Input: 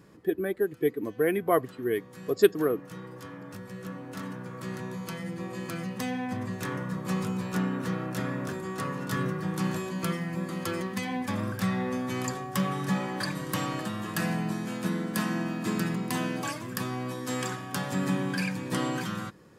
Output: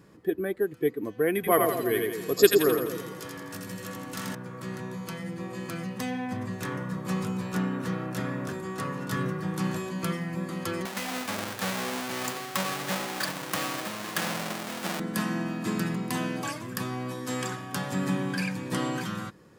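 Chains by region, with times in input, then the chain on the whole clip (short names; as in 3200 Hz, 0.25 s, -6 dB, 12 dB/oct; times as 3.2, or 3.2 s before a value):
1.35–4.35 high shelf 2500 Hz +10.5 dB + split-band echo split 690 Hz, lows 0.114 s, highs 84 ms, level -3 dB
10.85–15 half-waves squared off + HPF 730 Hz 6 dB/oct
whole clip: dry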